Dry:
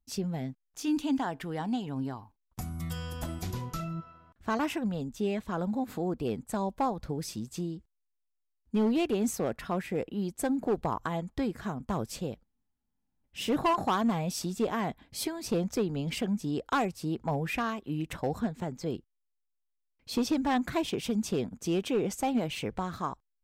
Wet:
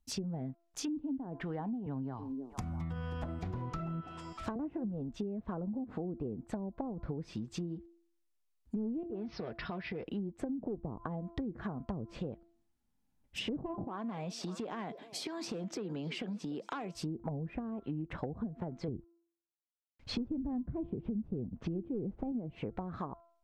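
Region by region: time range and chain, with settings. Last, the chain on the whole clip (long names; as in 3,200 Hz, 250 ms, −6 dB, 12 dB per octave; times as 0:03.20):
0:01.86–0:04.56: echo through a band-pass that steps 319 ms, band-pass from 340 Hz, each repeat 1.4 octaves, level −7.5 dB + multiband upward and downward compressor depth 40%
0:09.03–0:10.07: Butterworth low-pass 5,400 Hz 96 dB per octave + downward compressor 4 to 1, threshold −36 dBFS + notch comb filter 270 Hz
0:13.84–0:16.95: high-pass filter 160 Hz 24 dB per octave + downward compressor 4 to 1, threshold −36 dBFS + echo through a band-pass that steps 297 ms, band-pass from 490 Hz, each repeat 1.4 octaves, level −12 dB
0:18.88–0:22.32: variable-slope delta modulation 64 kbit/s + low-pass filter 4,100 Hz + low-shelf EQ 140 Hz +11.5 dB
whole clip: hum removal 338.7 Hz, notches 4; treble cut that deepens with the level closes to 370 Hz, closed at −27 dBFS; downward compressor 4 to 1, threshold −39 dBFS; level +3 dB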